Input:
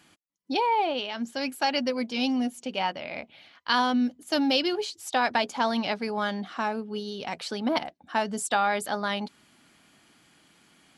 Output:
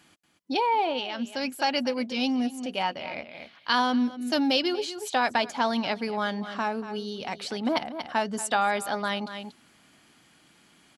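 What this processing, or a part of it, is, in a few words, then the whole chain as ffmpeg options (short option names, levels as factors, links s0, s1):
ducked delay: -filter_complex "[0:a]asplit=3[s0][s1][s2];[s1]adelay=235,volume=0.447[s3];[s2]apad=whole_len=494214[s4];[s3][s4]sidechaincompress=threshold=0.0141:ratio=8:attack=12:release=193[s5];[s0][s5]amix=inputs=2:normalize=0"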